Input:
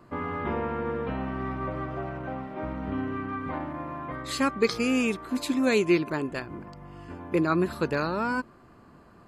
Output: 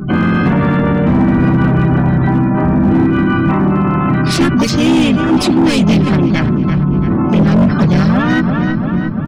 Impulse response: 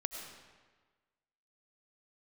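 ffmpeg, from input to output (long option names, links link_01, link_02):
-filter_complex "[0:a]adynamicequalizer=threshold=0.00158:dfrequency=9800:dqfactor=1.4:tfrequency=9800:tqfactor=1.4:attack=5:release=100:ratio=0.375:range=2.5:mode=boostabove:tftype=bell,adynamicsmooth=sensitivity=5:basefreq=2800,aecho=1:1:6.6:0.62,asplit=3[link_01][link_02][link_03];[link_02]asetrate=29433,aresample=44100,atempo=1.49831,volume=-15dB[link_04];[link_03]asetrate=88200,aresample=44100,atempo=0.5,volume=-15dB[link_05];[link_01][link_04][link_05]amix=inputs=3:normalize=0,afftdn=noise_reduction=26:noise_floor=-45,acrossover=split=160|3000[link_06][link_07][link_08];[link_07]acompressor=threshold=-27dB:ratio=10[link_09];[link_06][link_09][link_08]amix=inputs=3:normalize=0,lowshelf=frequency=280:width_type=q:width=3:gain=8,asplit=3[link_10][link_11][link_12];[link_11]asetrate=22050,aresample=44100,atempo=2,volume=-14dB[link_13];[link_12]asetrate=55563,aresample=44100,atempo=0.793701,volume=0dB[link_14];[link_10][link_13][link_14]amix=inputs=3:normalize=0,asoftclip=type=tanh:threshold=-11dB,asplit=2[link_15][link_16];[link_16]adelay=339,lowpass=frequency=3500:poles=1,volume=-15dB,asplit=2[link_17][link_18];[link_18]adelay=339,lowpass=frequency=3500:poles=1,volume=0.54,asplit=2[link_19][link_20];[link_20]adelay=339,lowpass=frequency=3500:poles=1,volume=0.54,asplit=2[link_21][link_22];[link_22]adelay=339,lowpass=frequency=3500:poles=1,volume=0.54,asplit=2[link_23][link_24];[link_24]adelay=339,lowpass=frequency=3500:poles=1,volume=0.54[link_25];[link_15][link_17][link_19][link_21][link_23][link_25]amix=inputs=6:normalize=0,volume=17.5dB,asoftclip=hard,volume=-17.5dB,alimiter=level_in=29dB:limit=-1dB:release=50:level=0:latency=1,volume=-5.5dB"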